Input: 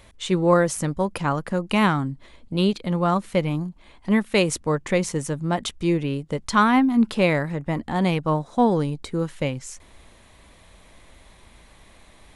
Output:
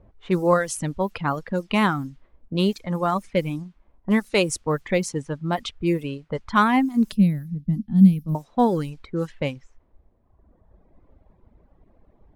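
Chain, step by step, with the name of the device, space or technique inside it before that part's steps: cassette deck with a dynamic noise filter (white noise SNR 29 dB; level-controlled noise filter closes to 480 Hz, open at -18.5 dBFS); reverb removal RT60 1.6 s; 7.12–8.35 s: FFT filter 130 Hz 0 dB, 200 Hz +13 dB, 370 Hz -16 dB, 1 kHz -29 dB, 5 kHz -11 dB, 7.7 kHz -17 dB, 11 kHz +2 dB

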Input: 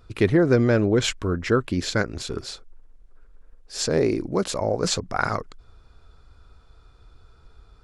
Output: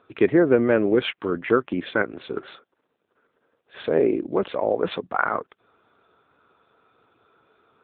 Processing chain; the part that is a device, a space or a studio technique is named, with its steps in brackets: 2.36–3.81 s: dynamic bell 1.5 kHz, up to +5 dB, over -54 dBFS, Q 1.2; telephone (band-pass 270–3400 Hz; trim +3 dB; AMR-NB 7.95 kbps 8 kHz)

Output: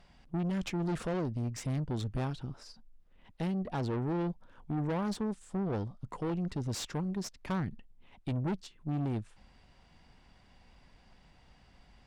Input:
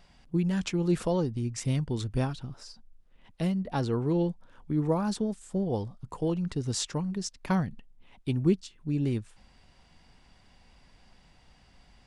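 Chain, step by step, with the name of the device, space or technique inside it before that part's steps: tube preamp driven hard (valve stage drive 31 dB, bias 0.55; treble shelf 4.9 kHz -7.5 dB); trim +1.5 dB

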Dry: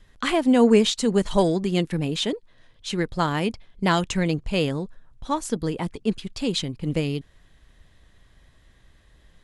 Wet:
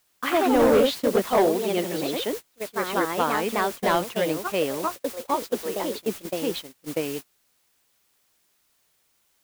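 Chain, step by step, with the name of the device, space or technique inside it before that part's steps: 5.34–5.89 s: steep high-pass 380 Hz 36 dB/octave; peaking EQ 2 kHz -3 dB 1.9 oct; ever faster or slower copies 117 ms, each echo +2 st, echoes 2; aircraft radio (band-pass 390–2500 Hz; hard clipper -16 dBFS, distortion -14 dB; white noise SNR 13 dB; gate -33 dBFS, range -29 dB); trim +2.5 dB

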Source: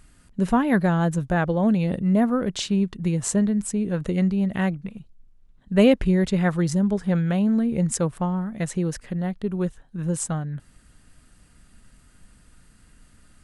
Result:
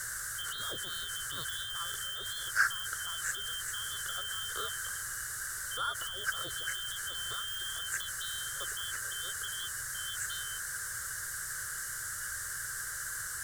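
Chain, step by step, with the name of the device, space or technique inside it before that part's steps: split-band scrambled radio (four frequency bands reordered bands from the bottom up 2413; band-pass 380–3100 Hz; white noise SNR 14 dB); Bessel low-pass 7 kHz, order 2; de-esser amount 80%; FFT filter 120 Hz 0 dB, 260 Hz -27 dB, 370 Hz -15 dB, 540 Hz -14 dB, 840 Hz -22 dB, 1.6 kHz +11 dB, 2.5 kHz -26 dB, 7.9 kHz +5 dB; trim +6.5 dB

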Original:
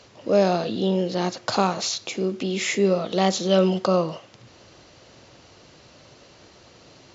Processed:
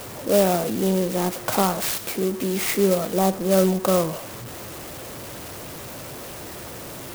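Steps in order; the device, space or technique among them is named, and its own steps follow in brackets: 3.12–3.86 s: low-pass 1.4 kHz -> 2.1 kHz 24 dB/octave; early CD player with a faulty converter (jump at every zero crossing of -31.5 dBFS; sampling jitter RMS 0.079 ms)

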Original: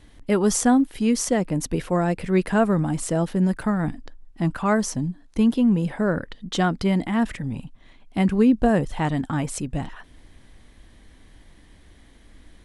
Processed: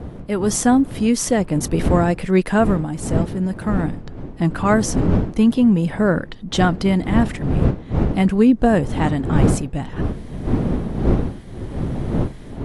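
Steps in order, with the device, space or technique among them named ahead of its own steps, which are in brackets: smartphone video outdoors (wind noise 230 Hz -26 dBFS; level rider gain up to 12 dB; trim -3 dB; AAC 64 kbps 44.1 kHz)

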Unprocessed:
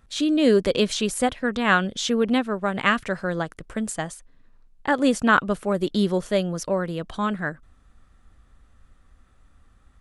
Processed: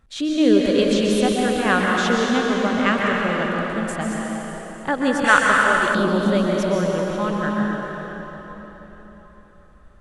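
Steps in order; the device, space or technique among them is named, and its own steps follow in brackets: swimming-pool hall (reverberation RT60 4.3 s, pre-delay 119 ms, DRR -3 dB; treble shelf 5.4 kHz -5 dB); 5.24–5.95 s: ten-band graphic EQ 250 Hz -10 dB, 2 kHz +10 dB, 8 kHz +10 dB; trim -1 dB

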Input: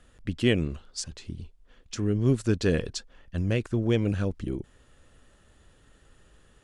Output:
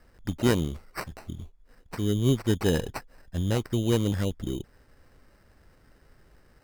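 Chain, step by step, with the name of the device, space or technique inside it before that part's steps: crushed at another speed (playback speed 0.5×; sample-and-hold 26×; playback speed 2×)

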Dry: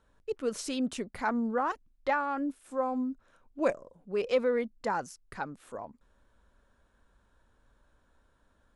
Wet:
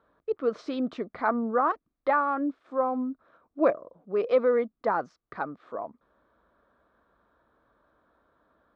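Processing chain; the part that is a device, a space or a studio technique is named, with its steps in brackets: guitar cabinet (cabinet simulation 88–3800 Hz, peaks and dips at 98 Hz -8 dB, 320 Hz +6 dB, 460 Hz +4 dB, 660 Hz +8 dB, 1.2 kHz +10 dB, 2.8 kHz -8 dB)

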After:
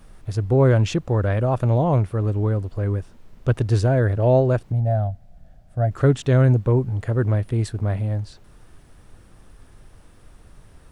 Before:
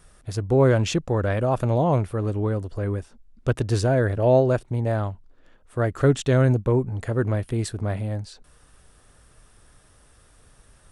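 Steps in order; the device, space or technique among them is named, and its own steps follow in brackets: car interior (peaking EQ 110 Hz +5 dB 0.82 oct; treble shelf 4.8 kHz -6 dB; brown noise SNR 25 dB); 4.72–5.91 s: FFT filter 180 Hz 0 dB, 420 Hz -16 dB, 700 Hz +7 dB, 1 kHz -18 dB, 1.5 kHz -8 dB, 2.5 kHz -12 dB, 4.5 kHz -8 dB

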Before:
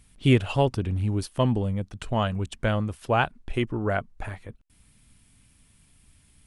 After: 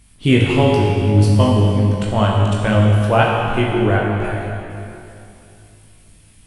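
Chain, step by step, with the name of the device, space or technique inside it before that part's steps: tunnel (flutter echo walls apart 3.3 m, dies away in 0.21 s; reverberation RT60 2.7 s, pre-delay 18 ms, DRR -1.5 dB); trim +4.5 dB

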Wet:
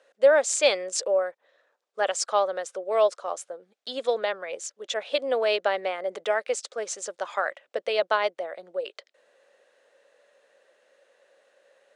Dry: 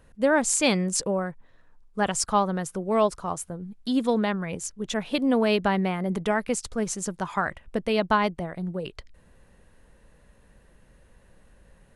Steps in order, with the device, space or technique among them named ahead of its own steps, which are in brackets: phone speaker on a table (cabinet simulation 460–7800 Hz, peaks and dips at 560 Hz +8 dB, 960 Hz -7 dB, 3.6 kHz +3 dB)

